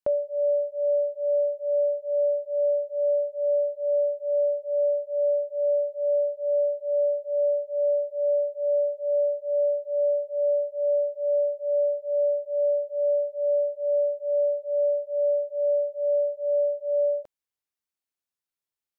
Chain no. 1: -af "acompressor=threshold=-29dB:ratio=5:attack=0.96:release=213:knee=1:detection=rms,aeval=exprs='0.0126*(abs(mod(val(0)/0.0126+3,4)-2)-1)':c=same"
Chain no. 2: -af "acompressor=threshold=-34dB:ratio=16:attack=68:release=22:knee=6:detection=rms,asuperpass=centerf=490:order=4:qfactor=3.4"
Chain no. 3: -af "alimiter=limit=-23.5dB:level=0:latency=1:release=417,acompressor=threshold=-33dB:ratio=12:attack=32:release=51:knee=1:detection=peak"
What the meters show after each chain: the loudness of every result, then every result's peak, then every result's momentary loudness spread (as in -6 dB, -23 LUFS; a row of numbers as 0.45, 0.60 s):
-41.0, -37.5, -34.0 LUFS; -38.0, -25.0, -23.5 dBFS; 0, 0, 0 LU